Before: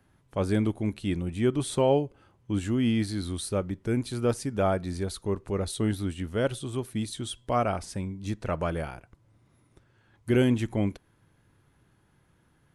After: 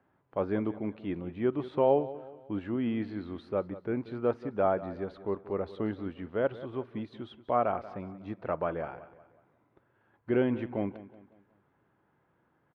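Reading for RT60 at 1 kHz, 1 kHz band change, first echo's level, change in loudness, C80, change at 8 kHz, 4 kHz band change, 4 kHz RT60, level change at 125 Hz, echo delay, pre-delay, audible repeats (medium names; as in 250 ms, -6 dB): no reverb, -0.5 dB, -16.0 dB, -3.5 dB, no reverb, under -35 dB, -15.0 dB, no reverb, -11.0 dB, 183 ms, no reverb, 3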